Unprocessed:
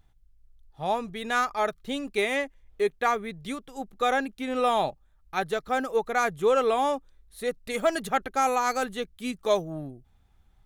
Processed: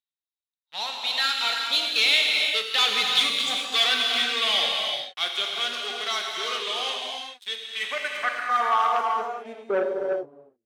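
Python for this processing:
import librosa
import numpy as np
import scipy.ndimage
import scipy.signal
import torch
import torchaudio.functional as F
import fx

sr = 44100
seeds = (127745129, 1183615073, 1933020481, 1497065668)

p1 = scipy.ndimage.median_filter(x, 3, mode='constant')
p2 = fx.doppler_pass(p1, sr, speed_mps=33, closest_m=17.0, pass_at_s=3.22)
p3 = fx.high_shelf(p2, sr, hz=7000.0, db=11.5)
p4 = fx.leveller(p3, sr, passes=5)
p5 = fx.filter_sweep_bandpass(p4, sr, from_hz=3500.0, to_hz=430.0, start_s=7.52, end_s=9.69, q=3.3)
p6 = np.clip(10.0 ** (30.0 / 20.0) * p5, -1.0, 1.0) / 10.0 ** (30.0 / 20.0)
p7 = p5 + (p6 * librosa.db_to_amplitude(-5.0))
p8 = fx.rev_gated(p7, sr, seeds[0], gate_ms=440, shape='flat', drr_db=-0.5)
p9 = fx.transformer_sat(p8, sr, knee_hz=1700.0)
y = p9 * librosa.db_to_amplitude(6.0)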